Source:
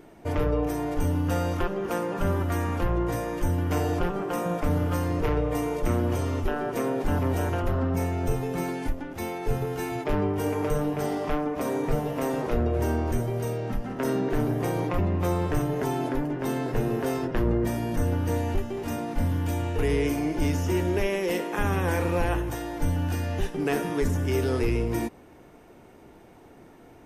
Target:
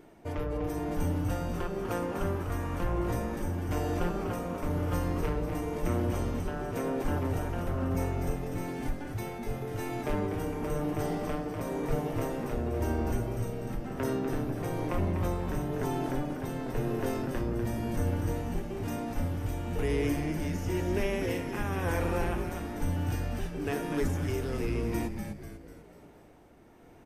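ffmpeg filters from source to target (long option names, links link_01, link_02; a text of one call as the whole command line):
ffmpeg -i in.wav -filter_complex "[0:a]tremolo=f=1:d=0.39,asplit=7[link_01][link_02][link_03][link_04][link_05][link_06][link_07];[link_02]adelay=246,afreqshift=-130,volume=-6dB[link_08];[link_03]adelay=492,afreqshift=-260,volume=-12.4dB[link_09];[link_04]adelay=738,afreqshift=-390,volume=-18.8dB[link_10];[link_05]adelay=984,afreqshift=-520,volume=-25.1dB[link_11];[link_06]adelay=1230,afreqshift=-650,volume=-31.5dB[link_12];[link_07]adelay=1476,afreqshift=-780,volume=-37.9dB[link_13];[link_01][link_08][link_09][link_10][link_11][link_12][link_13]amix=inputs=7:normalize=0,volume=-4.5dB" out.wav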